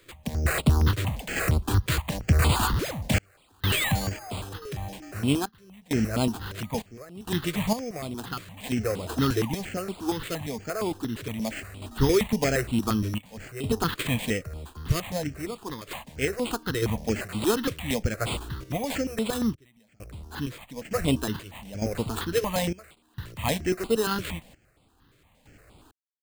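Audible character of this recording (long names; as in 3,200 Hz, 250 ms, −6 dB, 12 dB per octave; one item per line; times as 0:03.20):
sample-and-hold tremolo 2.2 Hz, depth 100%
aliases and images of a low sample rate 5,700 Hz, jitter 0%
notches that jump at a steady rate 8.6 Hz 220–6,000 Hz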